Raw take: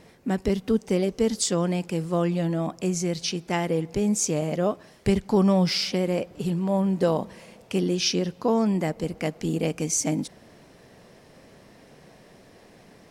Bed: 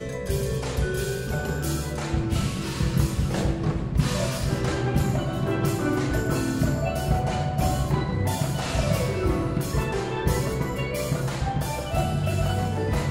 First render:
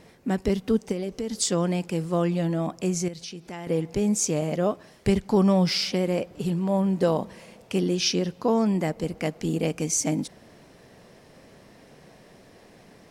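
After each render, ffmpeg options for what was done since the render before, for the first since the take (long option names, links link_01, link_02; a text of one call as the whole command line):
ffmpeg -i in.wav -filter_complex "[0:a]asplit=3[link_01][link_02][link_03];[link_01]afade=type=out:start_time=0.91:duration=0.02[link_04];[link_02]acompressor=threshold=-26dB:ratio=6:attack=3.2:release=140:knee=1:detection=peak,afade=type=in:start_time=0.91:duration=0.02,afade=type=out:start_time=1.38:duration=0.02[link_05];[link_03]afade=type=in:start_time=1.38:duration=0.02[link_06];[link_04][link_05][link_06]amix=inputs=3:normalize=0,asettb=1/sr,asplit=3[link_07][link_08][link_09];[link_07]atrim=end=3.084[link_10];[link_08]atrim=start=3.08:end=3.67,asetpts=PTS-STARTPTS,afade=type=in:duration=0.004:curve=qsin,afade=type=out:start_time=0.586:duration=0.004:curve=qsin,acompressor=threshold=-39dB:ratio=2.5:attack=3.2:release=140:knee=1:detection=peak[link_11];[link_09]atrim=start=3.666[link_12];[link_10][link_11]acrossfade=duration=0.004:curve1=hsin:curve2=qsin[link_13];[link_13][link_12]acrossfade=duration=0.004:curve1=qsin:curve2=hsin" out.wav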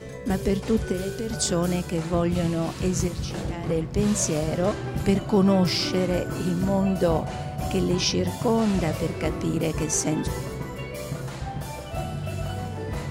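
ffmpeg -i in.wav -i bed.wav -filter_complex "[1:a]volume=-6dB[link_01];[0:a][link_01]amix=inputs=2:normalize=0" out.wav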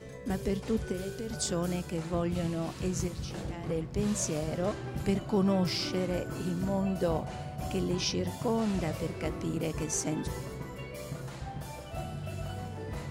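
ffmpeg -i in.wav -af "volume=-7.5dB" out.wav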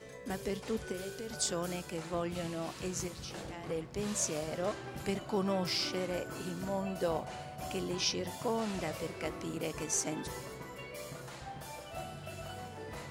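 ffmpeg -i in.wav -af "lowshelf=frequency=280:gain=-12" out.wav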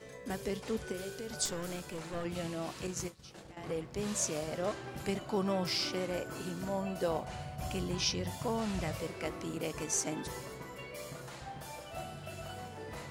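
ffmpeg -i in.wav -filter_complex "[0:a]asettb=1/sr,asplit=3[link_01][link_02][link_03];[link_01]atrim=end=1.454[link_04];[link_02]atrim=start=1.45:end=2.25,asetpts=PTS-STARTPTS,afade=type=in:duration=0.004:curve=qsin,afade=type=out:start_time=0.796:duration=0.004:curve=qsin,aeval=exprs='clip(val(0),-1,0.0106)':channel_layout=same[link_05];[link_03]atrim=start=2.246[link_06];[link_04][link_05]acrossfade=duration=0.004:curve1=hsin:curve2=qsin[link_07];[link_07][link_06]acrossfade=duration=0.004:curve1=qsin:curve2=hsin,asettb=1/sr,asplit=3[link_08][link_09][link_10];[link_08]atrim=end=2.874[link_11];[link_09]atrim=start=2.87:end=3.57,asetpts=PTS-STARTPTS,afade=type=in:duration=0.004:curve=qsin,afade=type=out:start_time=0.696:duration=0.004:curve=qsin,agate=range=-33dB:threshold=-37dB:ratio=3:release=100:detection=peak[link_12];[link_10]atrim=start=3.566[link_13];[link_11][link_12]acrossfade=duration=0.004:curve1=hsin:curve2=qsin[link_14];[link_14][link_13]acrossfade=duration=0.004:curve1=qsin:curve2=hsin,asplit=3[link_15][link_16][link_17];[link_15]afade=type=out:start_time=7.26:duration=0.02[link_18];[link_16]asubboost=boost=3:cutoff=160,afade=type=in:start_time=7.26:duration=0.02,afade=type=out:start_time=8.99:duration=0.02[link_19];[link_17]afade=type=in:start_time=8.99:duration=0.02[link_20];[link_18][link_19][link_20]amix=inputs=3:normalize=0" out.wav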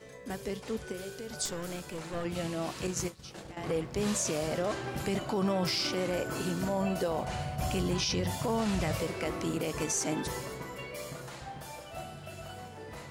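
ffmpeg -i in.wav -af "dynaudnorm=framelen=410:gausssize=13:maxgain=7dB,alimiter=limit=-22dB:level=0:latency=1:release=18" out.wav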